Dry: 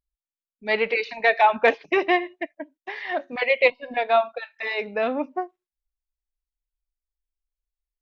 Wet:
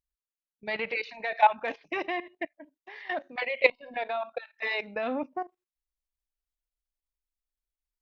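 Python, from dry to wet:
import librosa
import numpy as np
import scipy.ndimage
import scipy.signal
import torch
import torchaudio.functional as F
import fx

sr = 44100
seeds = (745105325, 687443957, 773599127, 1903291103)

y = fx.dynamic_eq(x, sr, hz=410.0, q=4.4, threshold_db=-39.0, ratio=4.0, max_db=-8)
y = fx.level_steps(y, sr, step_db=15)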